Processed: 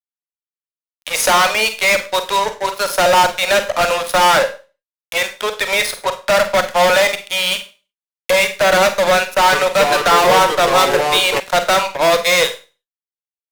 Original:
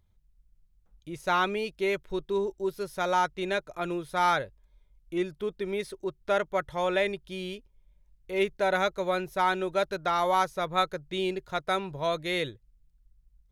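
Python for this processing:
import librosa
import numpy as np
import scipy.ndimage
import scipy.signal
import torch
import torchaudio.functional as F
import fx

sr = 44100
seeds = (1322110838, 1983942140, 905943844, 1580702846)

y = fx.recorder_agc(x, sr, target_db=-16.5, rise_db_per_s=10.0, max_gain_db=30)
y = scipy.signal.sosfilt(scipy.signal.butter(12, 500.0, 'highpass', fs=sr, output='sos'), y)
y = fx.fuzz(y, sr, gain_db=36.0, gate_db=-44.0)
y = fx.rev_schroeder(y, sr, rt60_s=0.33, comb_ms=33, drr_db=8.0)
y = fx.echo_pitch(y, sr, ms=373, semitones=-4, count=2, db_per_echo=-6.0, at=(9.15, 11.4))
y = y * librosa.db_to_amplitude(2.5)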